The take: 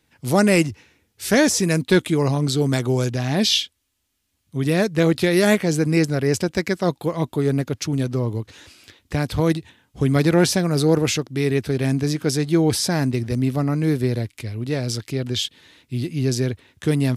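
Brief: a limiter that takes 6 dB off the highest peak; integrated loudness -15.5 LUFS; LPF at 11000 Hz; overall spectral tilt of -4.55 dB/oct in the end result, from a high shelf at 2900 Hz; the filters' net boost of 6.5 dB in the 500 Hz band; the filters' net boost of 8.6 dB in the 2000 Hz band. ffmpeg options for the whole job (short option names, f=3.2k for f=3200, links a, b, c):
-af "lowpass=11k,equalizer=f=500:t=o:g=7.5,equalizer=f=2k:t=o:g=8,highshelf=f=2.9k:g=5.5,volume=2dB,alimiter=limit=-1dB:level=0:latency=1"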